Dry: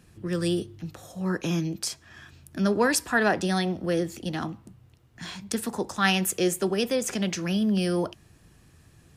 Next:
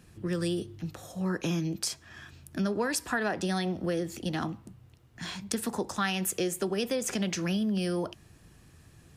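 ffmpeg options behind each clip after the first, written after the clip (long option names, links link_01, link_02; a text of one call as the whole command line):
ffmpeg -i in.wav -af "acompressor=threshold=-26dB:ratio=6" out.wav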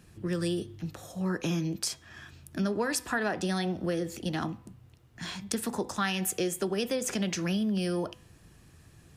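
ffmpeg -i in.wav -af "bandreject=frequency=251.1:width_type=h:width=4,bandreject=frequency=502.2:width_type=h:width=4,bandreject=frequency=753.3:width_type=h:width=4,bandreject=frequency=1004.4:width_type=h:width=4,bandreject=frequency=1255.5:width_type=h:width=4,bandreject=frequency=1506.6:width_type=h:width=4,bandreject=frequency=1757.7:width_type=h:width=4,bandreject=frequency=2008.8:width_type=h:width=4,bandreject=frequency=2259.9:width_type=h:width=4,bandreject=frequency=2511:width_type=h:width=4,bandreject=frequency=2762.1:width_type=h:width=4,bandreject=frequency=3013.2:width_type=h:width=4,bandreject=frequency=3264.3:width_type=h:width=4,bandreject=frequency=3515.4:width_type=h:width=4,bandreject=frequency=3766.5:width_type=h:width=4" out.wav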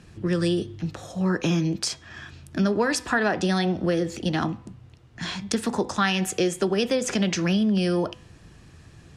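ffmpeg -i in.wav -af "lowpass=6700,volume=7dB" out.wav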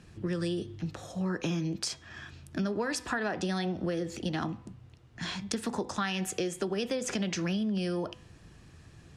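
ffmpeg -i in.wav -af "acompressor=threshold=-25dB:ratio=2.5,volume=-4.5dB" out.wav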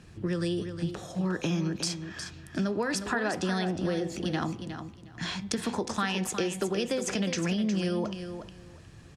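ffmpeg -i in.wav -af "aecho=1:1:361|722|1083:0.355|0.0674|0.0128,volume=2dB" out.wav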